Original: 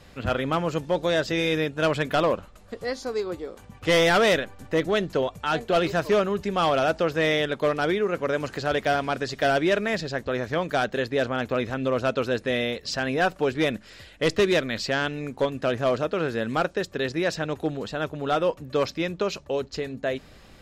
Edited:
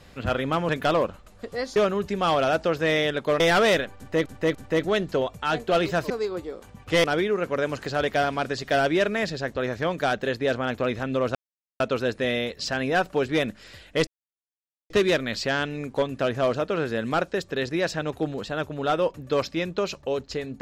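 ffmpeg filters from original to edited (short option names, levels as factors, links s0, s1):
-filter_complex "[0:a]asplit=10[s0][s1][s2][s3][s4][s5][s6][s7][s8][s9];[s0]atrim=end=0.692[s10];[s1]atrim=start=1.978:end=3.052[s11];[s2]atrim=start=6.108:end=7.752[s12];[s3]atrim=start=3.988:end=4.852[s13];[s4]atrim=start=4.558:end=4.852[s14];[s5]atrim=start=4.558:end=6.112[s15];[s6]atrim=start=3.048:end=3.992[s16];[s7]atrim=start=7.748:end=12.06,asetpts=PTS-STARTPTS,afade=t=out:st=4.308:d=0.004:c=hsin,apad=pad_dur=0.45[s17];[s8]atrim=start=12.06:end=14.33,asetpts=PTS-STARTPTS,afade=t=in:d=0.004:c=hsin,afade=t=out:st=2.266:d=0.004:c=hsin,apad=pad_dur=0.83[s18];[s9]atrim=start=14.33,asetpts=PTS-STARTPTS,afade=t=in:d=0.004:c=hsin[s19];[s10][s11]acrossfade=d=0.004:c1=hsin:c2=hsin[s20];[s20][s12]acrossfade=d=0.004:c1=hsin:c2=hsin[s21];[s21][s13]acrossfade=d=0.004:c1=hsin:c2=hsin[s22];[s22][s14]acrossfade=d=0.004:c1=hsin:c2=hsin[s23];[s23][s15]acrossfade=d=0.004:c1=hsin:c2=hsin[s24];[s24][s16]acrossfade=d=0.004:c1=hsin:c2=hsin[s25];[s17][s18][s19]concat=n=3:v=0:a=1[s26];[s25][s26]acrossfade=d=0.004:c1=hsin:c2=hsin"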